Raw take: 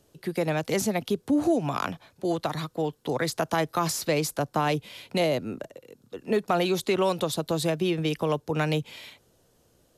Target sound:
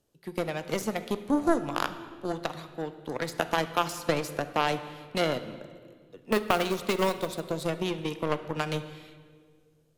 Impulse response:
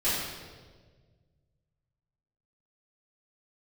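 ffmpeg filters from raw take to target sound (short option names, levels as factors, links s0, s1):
-filter_complex "[0:a]aeval=exprs='0.224*(cos(1*acos(clip(val(0)/0.224,-1,1)))-cos(1*PI/2))+0.0708*(cos(3*acos(clip(val(0)/0.224,-1,1)))-cos(3*PI/2))+0.00501*(cos(5*acos(clip(val(0)/0.224,-1,1)))-cos(5*PI/2))':c=same,asettb=1/sr,asplit=3[s0][s1][s2];[s0]atrim=end=6.324[s3];[s1]atrim=start=6.32:end=7.4,asetpts=PTS-STARTPTS,afade=t=in:d=0.004:c=qsin,afade=t=out:st=1.076:d=0.004:c=qsin,acrusher=bits=4:mode=log:mix=0:aa=0.000001[s4];[s2]atrim=start=7.396[s5];[s3][s4]acrossfade=d=0.004:c1=hsin:c2=qsin[s6];[s6][s5]acrossfade=d=0.004:c1=qsin:c2=hsin,asplit=2[s7][s8];[1:a]atrim=start_sample=2205,asetrate=33516,aresample=44100[s9];[s8][s9]afir=irnorm=-1:irlink=0,volume=0.0708[s10];[s7][s10]amix=inputs=2:normalize=0,volume=1.5"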